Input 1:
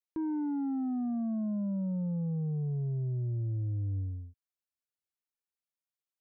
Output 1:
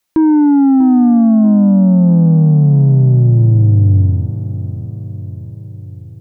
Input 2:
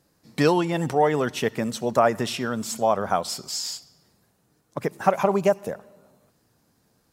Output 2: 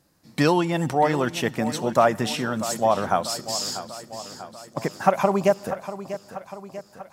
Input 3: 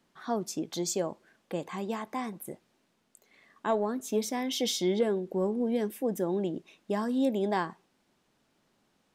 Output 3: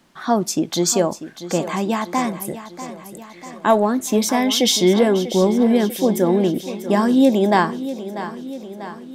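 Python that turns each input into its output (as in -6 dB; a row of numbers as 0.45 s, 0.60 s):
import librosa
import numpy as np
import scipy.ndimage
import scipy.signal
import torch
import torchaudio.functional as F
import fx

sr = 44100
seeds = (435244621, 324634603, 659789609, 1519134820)

p1 = fx.peak_eq(x, sr, hz=440.0, db=-6.0, octaves=0.26)
p2 = p1 + fx.echo_feedback(p1, sr, ms=642, feedback_pct=59, wet_db=-13.0, dry=0)
y = librosa.util.normalize(p2) * 10.0 ** (-3 / 20.0)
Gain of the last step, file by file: +23.5 dB, +1.5 dB, +14.0 dB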